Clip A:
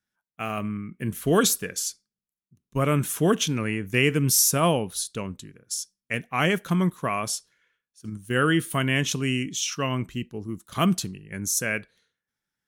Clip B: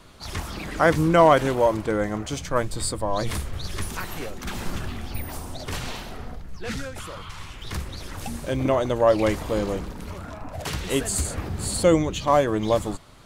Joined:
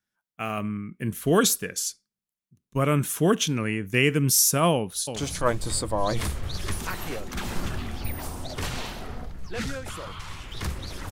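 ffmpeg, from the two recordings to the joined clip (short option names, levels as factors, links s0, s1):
-filter_complex "[0:a]apad=whole_dur=11.11,atrim=end=11.11,atrim=end=5.162[s0];[1:a]atrim=start=2.258:end=8.21[s1];[s0][s1]acrossfade=d=0.004:c1=hsin:c2=hsin,asplit=2[s2][s3];[s3]afade=t=in:st=4.73:d=0.01,afade=t=out:st=5.16:d=0.01,aecho=0:1:340|680|1020|1360:0.398107|0.139338|0.0487681|0.0170688[s4];[s2][s4]amix=inputs=2:normalize=0"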